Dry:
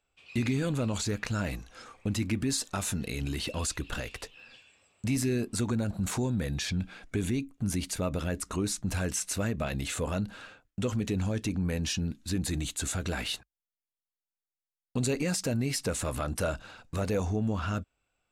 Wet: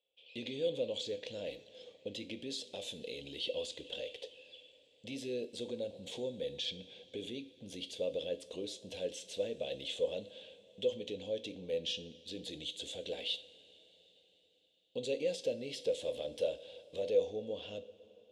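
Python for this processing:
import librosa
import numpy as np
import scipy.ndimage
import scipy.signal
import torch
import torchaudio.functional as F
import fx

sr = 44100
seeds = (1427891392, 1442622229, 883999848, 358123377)

y = fx.double_bandpass(x, sr, hz=1300.0, octaves=2.7)
y = fx.rev_double_slope(y, sr, seeds[0], early_s=0.39, late_s=4.7, knee_db=-18, drr_db=10.0)
y = y * librosa.db_to_amplitude(4.5)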